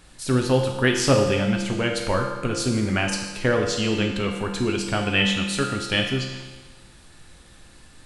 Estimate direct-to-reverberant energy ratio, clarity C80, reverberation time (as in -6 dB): 1.0 dB, 6.0 dB, 1.3 s